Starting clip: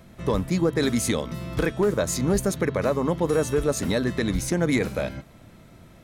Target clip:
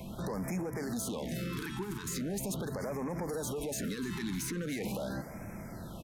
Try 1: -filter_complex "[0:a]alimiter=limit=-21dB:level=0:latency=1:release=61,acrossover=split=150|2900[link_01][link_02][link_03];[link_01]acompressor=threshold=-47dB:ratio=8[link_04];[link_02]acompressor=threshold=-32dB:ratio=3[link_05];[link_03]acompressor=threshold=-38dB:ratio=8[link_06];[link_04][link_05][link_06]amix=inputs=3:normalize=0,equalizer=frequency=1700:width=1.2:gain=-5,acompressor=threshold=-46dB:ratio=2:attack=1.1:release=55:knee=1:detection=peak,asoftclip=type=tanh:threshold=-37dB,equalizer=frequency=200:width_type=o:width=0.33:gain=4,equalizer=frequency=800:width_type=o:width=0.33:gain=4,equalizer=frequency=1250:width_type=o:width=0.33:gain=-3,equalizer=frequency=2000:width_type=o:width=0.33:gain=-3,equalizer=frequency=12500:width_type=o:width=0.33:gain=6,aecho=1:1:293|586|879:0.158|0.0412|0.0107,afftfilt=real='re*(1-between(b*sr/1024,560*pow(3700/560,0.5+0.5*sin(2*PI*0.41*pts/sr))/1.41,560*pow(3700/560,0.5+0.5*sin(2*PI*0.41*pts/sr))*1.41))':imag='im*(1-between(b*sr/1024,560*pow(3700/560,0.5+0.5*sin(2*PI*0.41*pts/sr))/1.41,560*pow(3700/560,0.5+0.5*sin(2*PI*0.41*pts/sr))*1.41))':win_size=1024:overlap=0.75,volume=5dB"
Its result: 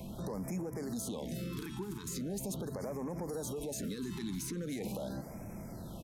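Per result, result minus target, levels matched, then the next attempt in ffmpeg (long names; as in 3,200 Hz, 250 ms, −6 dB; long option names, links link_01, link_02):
2,000 Hz band −6.5 dB; downward compressor: peak gain reduction +4 dB
-filter_complex "[0:a]alimiter=limit=-21dB:level=0:latency=1:release=61,acrossover=split=150|2900[link_01][link_02][link_03];[link_01]acompressor=threshold=-47dB:ratio=8[link_04];[link_02]acompressor=threshold=-32dB:ratio=3[link_05];[link_03]acompressor=threshold=-38dB:ratio=8[link_06];[link_04][link_05][link_06]amix=inputs=3:normalize=0,equalizer=frequency=1700:width=1.2:gain=4,acompressor=threshold=-46dB:ratio=2:attack=1.1:release=55:knee=1:detection=peak,asoftclip=type=tanh:threshold=-37dB,equalizer=frequency=200:width_type=o:width=0.33:gain=4,equalizer=frequency=800:width_type=o:width=0.33:gain=4,equalizer=frequency=1250:width_type=o:width=0.33:gain=-3,equalizer=frequency=2000:width_type=o:width=0.33:gain=-3,equalizer=frequency=12500:width_type=o:width=0.33:gain=6,aecho=1:1:293|586|879:0.158|0.0412|0.0107,afftfilt=real='re*(1-between(b*sr/1024,560*pow(3700/560,0.5+0.5*sin(2*PI*0.41*pts/sr))/1.41,560*pow(3700/560,0.5+0.5*sin(2*PI*0.41*pts/sr))*1.41))':imag='im*(1-between(b*sr/1024,560*pow(3700/560,0.5+0.5*sin(2*PI*0.41*pts/sr))/1.41,560*pow(3700/560,0.5+0.5*sin(2*PI*0.41*pts/sr))*1.41))':win_size=1024:overlap=0.75,volume=5dB"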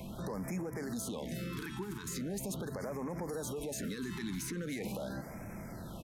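downward compressor: peak gain reduction +4.5 dB
-filter_complex "[0:a]alimiter=limit=-21dB:level=0:latency=1:release=61,acrossover=split=150|2900[link_01][link_02][link_03];[link_01]acompressor=threshold=-47dB:ratio=8[link_04];[link_02]acompressor=threshold=-32dB:ratio=3[link_05];[link_03]acompressor=threshold=-38dB:ratio=8[link_06];[link_04][link_05][link_06]amix=inputs=3:normalize=0,equalizer=frequency=1700:width=1.2:gain=4,acompressor=threshold=-37dB:ratio=2:attack=1.1:release=55:knee=1:detection=peak,asoftclip=type=tanh:threshold=-37dB,equalizer=frequency=200:width_type=o:width=0.33:gain=4,equalizer=frequency=800:width_type=o:width=0.33:gain=4,equalizer=frequency=1250:width_type=o:width=0.33:gain=-3,equalizer=frequency=2000:width_type=o:width=0.33:gain=-3,equalizer=frequency=12500:width_type=o:width=0.33:gain=6,aecho=1:1:293|586|879:0.158|0.0412|0.0107,afftfilt=real='re*(1-between(b*sr/1024,560*pow(3700/560,0.5+0.5*sin(2*PI*0.41*pts/sr))/1.41,560*pow(3700/560,0.5+0.5*sin(2*PI*0.41*pts/sr))*1.41))':imag='im*(1-between(b*sr/1024,560*pow(3700/560,0.5+0.5*sin(2*PI*0.41*pts/sr))/1.41,560*pow(3700/560,0.5+0.5*sin(2*PI*0.41*pts/sr))*1.41))':win_size=1024:overlap=0.75,volume=5dB"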